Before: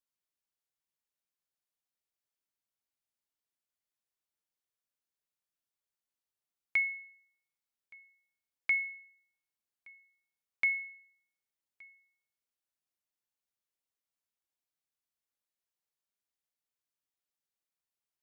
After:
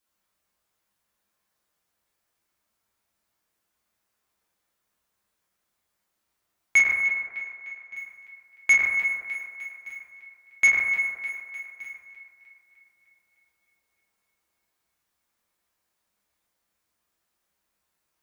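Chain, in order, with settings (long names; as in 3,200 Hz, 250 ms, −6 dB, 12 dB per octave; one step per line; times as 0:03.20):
parametric band 470 Hz −3 dB 0.27 octaves
feedback echo with a high-pass in the loop 303 ms, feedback 57%, high-pass 270 Hz, level −12 dB
in parallel at −10.5 dB: centre clipping without the shift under −49 dBFS
0:07.02–0:07.96: on the sum: high-frequency loss of the air 130 metres
convolution reverb RT60 1.7 s, pre-delay 7 ms, DRR −8.5 dB
soft clipping −20.5 dBFS, distortion −12 dB
level +8 dB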